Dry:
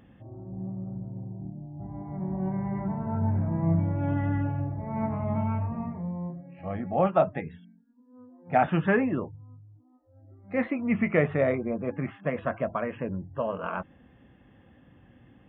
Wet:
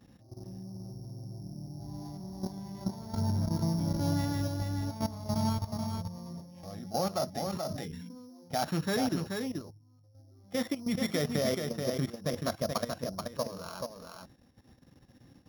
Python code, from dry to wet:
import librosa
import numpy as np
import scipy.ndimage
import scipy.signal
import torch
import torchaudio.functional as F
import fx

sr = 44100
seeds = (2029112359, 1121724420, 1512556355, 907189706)

y = np.r_[np.sort(x[:len(x) // 8 * 8].reshape(-1, 8), axis=1).ravel(), x[len(x) // 8 * 8:]]
y = fx.low_shelf(y, sr, hz=150.0, db=5.5, at=(11.81, 13.06))
y = fx.level_steps(y, sr, step_db=14)
y = y + 10.0 ** (-5.0 / 20.0) * np.pad(y, (int(431 * sr / 1000.0), 0))[:len(y)]
y = fx.sustainer(y, sr, db_per_s=26.0, at=(7.35, 8.54), fade=0.02)
y = F.gain(torch.from_numpy(y), -1.0).numpy()